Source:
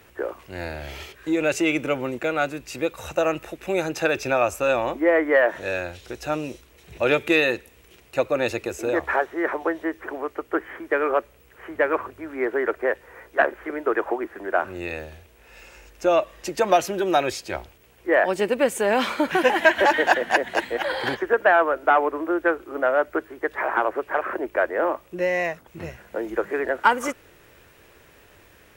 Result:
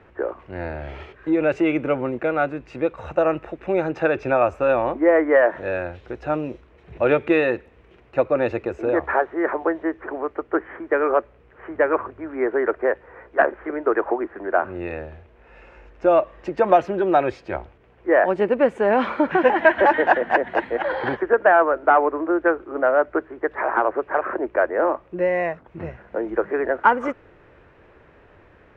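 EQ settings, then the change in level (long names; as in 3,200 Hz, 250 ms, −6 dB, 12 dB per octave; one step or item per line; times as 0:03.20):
low-pass filter 1,600 Hz 12 dB per octave
+3.0 dB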